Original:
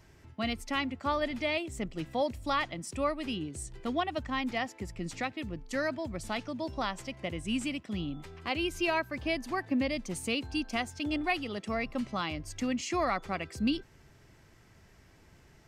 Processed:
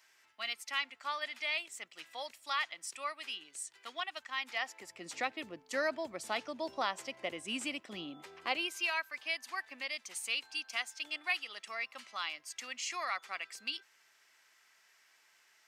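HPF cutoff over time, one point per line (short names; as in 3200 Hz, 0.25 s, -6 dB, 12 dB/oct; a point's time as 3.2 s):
4.38 s 1400 Hz
5.2 s 440 Hz
8.48 s 440 Hz
8.9 s 1400 Hz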